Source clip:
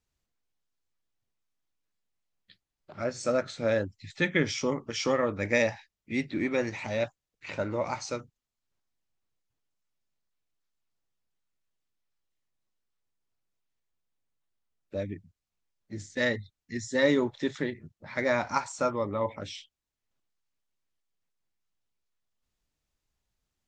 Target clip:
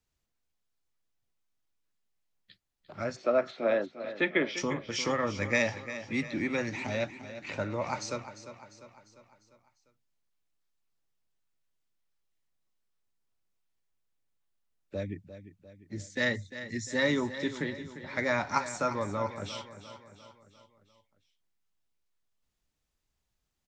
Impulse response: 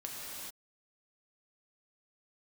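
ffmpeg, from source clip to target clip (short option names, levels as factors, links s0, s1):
-filter_complex "[0:a]acrossover=split=290|630|2600[s0][s1][s2][s3];[s1]acompressor=threshold=0.00891:ratio=6[s4];[s0][s4][s2][s3]amix=inputs=4:normalize=0,asplit=3[s5][s6][s7];[s5]afade=t=out:st=3.15:d=0.02[s8];[s6]highpass=f=230:w=0.5412,highpass=f=230:w=1.3066,equalizer=f=370:t=q:w=4:g=7,equalizer=f=660:t=q:w=4:g=9,equalizer=f=1100:t=q:w=4:g=4,equalizer=f=1600:t=q:w=4:g=-3,lowpass=f=3500:w=0.5412,lowpass=f=3500:w=1.3066,afade=t=in:st=3.15:d=0.02,afade=t=out:st=4.56:d=0.02[s9];[s7]afade=t=in:st=4.56:d=0.02[s10];[s8][s9][s10]amix=inputs=3:normalize=0,aecho=1:1:349|698|1047|1396|1745:0.237|0.123|0.0641|0.0333|0.0173"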